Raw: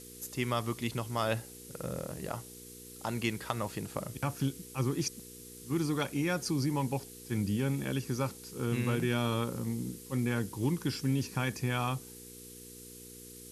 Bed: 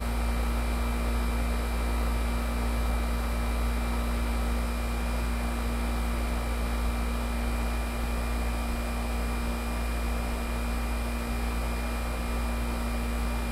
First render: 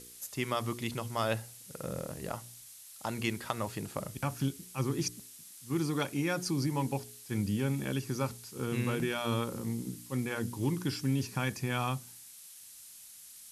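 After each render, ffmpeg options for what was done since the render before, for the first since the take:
-af "bandreject=f=60:t=h:w=4,bandreject=f=120:t=h:w=4,bandreject=f=180:t=h:w=4,bandreject=f=240:t=h:w=4,bandreject=f=300:t=h:w=4,bandreject=f=360:t=h:w=4,bandreject=f=420:t=h:w=4,bandreject=f=480:t=h:w=4"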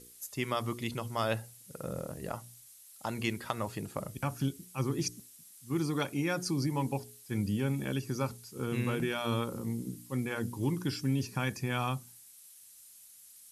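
-af "afftdn=nr=7:nf=-52"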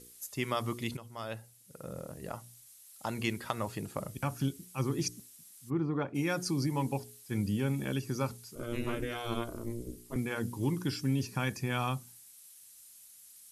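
-filter_complex "[0:a]asplit=3[a][b][c];[a]afade=t=out:st=5.69:d=0.02[d];[b]lowpass=1.4k,afade=t=in:st=5.69:d=0.02,afade=t=out:st=6.14:d=0.02[e];[c]afade=t=in:st=6.14:d=0.02[f];[d][e][f]amix=inputs=3:normalize=0,asettb=1/sr,asplit=3[g][h][i];[g]atrim=end=8.554[j];[h]atrim=start=8.55:end=10.16,asetpts=PTS-STARTPTS,afade=t=in:d=0.004:c=qsin,afade=t=out:st=1.606:d=0.004:c=qsin,aeval=exprs='val(0)*sin(2*PI*120*n/s)':c=same[k];[i]atrim=start=10.156[l];[j][k]acrossfade=d=0.004:c1=hsin:c2=qsin[m];[m][l]acrossfade=d=0.004:c1=qsin:c2=hsin,asplit=2[n][o];[n]atrim=end=0.97,asetpts=PTS-STARTPTS,afade=t=out:st=0.966:d=0.004:c=hsin:silence=0.251189[p];[o]atrim=start=0.97,asetpts=PTS-STARTPTS,afade=t=in:d=2.01:silence=0.251189[q];[p][q]concat=n=2:v=0:a=1"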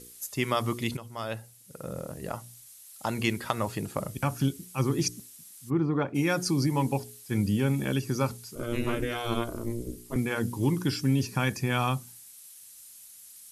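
-af "volume=5.5dB"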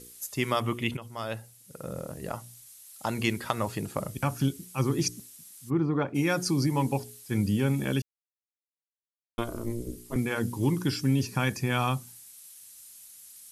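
-filter_complex "[0:a]asettb=1/sr,asplit=3[a][b][c];[a]atrim=end=0.604[d];[b]atrim=start=0.6:end=1.02,asetpts=PTS-STARTPTS,afade=t=in:d=0.004:c=qsin,afade=t=out:st=0.416:d=0.004:c=qsin,highshelf=f=3.6k:t=q:w=3:g=-6[e];[c]atrim=start=1.016[f];[d][e]acrossfade=d=0.004:c1=hsin:c2=qsin[g];[g][f]acrossfade=d=0.004:c1=qsin:c2=hsin,asplit=3[h][i][j];[h]atrim=end=8.02,asetpts=PTS-STARTPTS,afade=t=out:st=8.016:d=0.004:c=hsin[k];[i]atrim=start=8.02:end=9.38,asetpts=PTS-STARTPTS,volume=0[l];[j]atrim=start=9.38,asetpts=PTS-STARTPTS,afade=t=in:d=0.004:c=hsin[m];[k][l][m]concat=n=3:v=0:a=1"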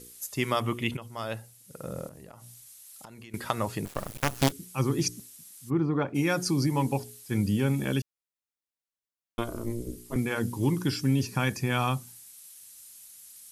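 -filter_complex "[0:a]asettb=1/sr,asplit=3[a][b][c];[a]atrim=end=2.074[d];[b]atrim=start=2.07:end=3.34,asetpts=PTS-STARTPTS,afade=t=in:d=0.004:c=qsin,afade=t=out:st=1.266:d=0.004:c=qsin,acompressor=threshold=-43dB:ratio=16:attack=3.2:release=140:knee=1:detection=peak[e];[c]atrim=start=3.336[f];[d][e]acrossfade=d=0.004:c1=hsin:c2=qsin[g];[g][f]acrossfade=d=0.004:c1=qsin:c2=hsin,asettb=1/sr,asplit=3[h][i][j];[h]atrim=end=3.854[k];[i]atrim=start=3.85:end=4.52,asetpts=PTS-STARTPTS,afade=t=in:d=0.004:c=qsin,afade=t=out:st=0.666:d=0.004:c=qsin,acrusher=bits=4:dc=4:mix=0:aa=0.000001[l];[j]atrim=start=4.516[m];[k][l]acrossfade=d=0.004:c1=hsin:c2=qsin[n];[n][m]acrossfade=d=0.004:c1=qsin:c2=hsin"

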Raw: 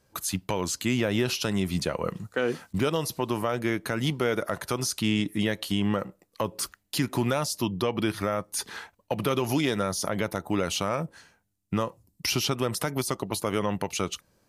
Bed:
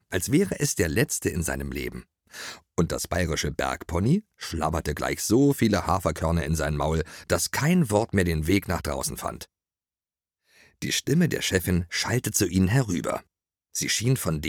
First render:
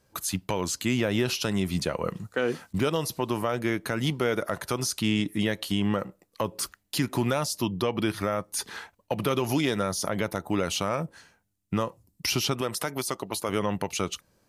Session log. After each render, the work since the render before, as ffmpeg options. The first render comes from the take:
-filter_complex "[0:a]asettb=1/sr,asplit=3[a][b][c];[a]atrim=end=12.614[d];[b]atrim=start=12.61:end=13.49,asetpts=PTS-STARTPTS,afade=t=in:d=0.004:c=qsin,afade=t=out:st=0.876:d=0.004:c=qsin,lowshelf=f=230:g=-9[e];[c]atrim=start=13.486[f];[d][e]acrossfade=d=0.004:c1=hsin:c2=qsin[g];[g][f]acrossfade=d=0.004:c1=qsin:c2=hsin"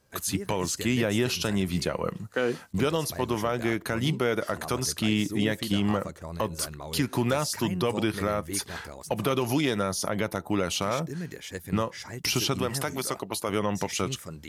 -filter_complex "[1:a]volume=-14dB[a];[0:a][a]amix=inputs=2:normalize=0"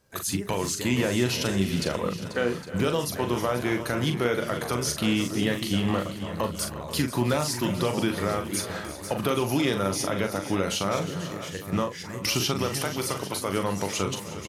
-filter_complex "[0:a]asplit=2[a][b];[b]adelay=41,volume=-7dB[c];[a][c]amix=inputs=2:normalize=0,aecho=1:1:316|359|488|809:0.126|0.168|0.224|0.168"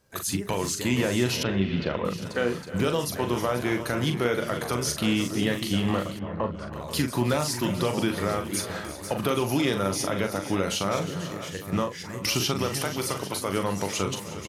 -filter_complex "[0:a]asettb=1/sr,asplit=3[a][b][c];[a]atrim=end=1.434[d];[b]atrim=start=1.43:end=2.05,asetpts=PTS-STARTPTS,afade=t=in:d=0.004:c=qsin,afade=t=out:st=0.616:d=0.004:c=qsin,lowpass=f=3.5k:w=0.5412,lowpass=f=3.5k:w=1.3066[e];[c]atrim=start=2.046[f];[d][e]acrossfade=d=0.004:c1=hsin:c2=qsin[g];[g][f]acrossfade=d=0.004:c1=qsin:c2=hsin,asettb=1/sr,asplit=3[h][i][j];[h]atrim=end=6.194[k];[i]atrim=start=6.19:end=6.73,asetpts=PTS-STARTPTS,afade=t=in:d=0.004:c=qsin,afade=t=out:st=0.536:d=0.004:c=qsin,lowpass=1.7k[l];[j]atrim=start=6.726[m];[k][l]acrossfade=d=0.004:c1=hsin:c2=qsin[n];[n][m]acrossfade=d=0.004:c1=qsin:c2=hsin"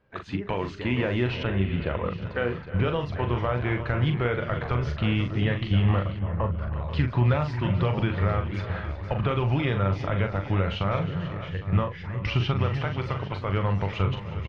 -af "lowpass=f=2.9k:w=0.5412,lowpass=f=2.9k:w=1.3066,asubboost=boost=10.5:cutoff=81"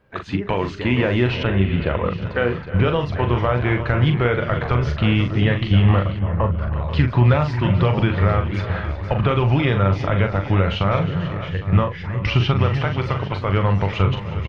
-af "volume=7dB"

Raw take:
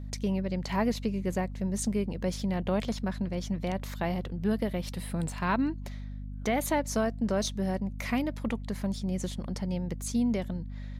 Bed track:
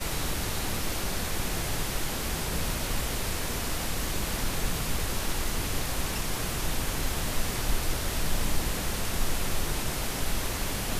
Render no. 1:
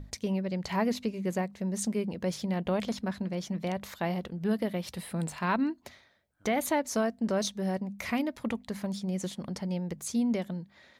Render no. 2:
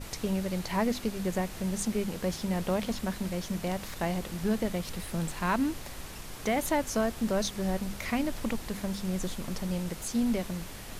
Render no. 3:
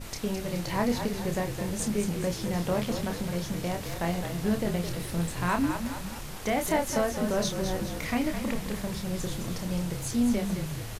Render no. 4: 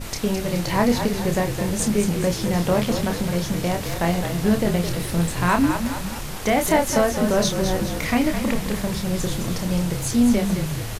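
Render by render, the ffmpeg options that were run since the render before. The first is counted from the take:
-af "bandreject=f=50:t=h:w=6,bandreject=f=100:t=h:w=6,bandreject=f=150:t=h:w=6,bandreject=f=200:t=h:w=6,bandreject=f=250:t=h:w=6"
-filter_complex "[1:a]volume=-12dB[a];[0:a][a]amix=inputs=2:normalize=0"
-filter_complex "[0:a]asplit=2[a][b];[b]adelay=29,volume=-6dB[c];[a][c]amix=inputs=2:normalize=0,asplit=7[d][e][f][g][h][i][j];[e]adelay=212,afreqshift=-43,volume=-7.5dB[k];[f]adelay=424,afreqshift=-86,volume=-13.2dB[l];[g]adelay=636,afreqshift=-129,volume=-18.9dB[m];[h]adelay=848,afreqshift=-172,volume=-24.5dB[n];[i]adelay=1060,afreqshift=-215,volume=-30.2dB[o];[j]adelay=1272,afreqshift=-258,volume=-35.9dB[p];[d][k][l][m][n][o][p]amix=inputs=7:normalize=0"
-af "volume=8dB"

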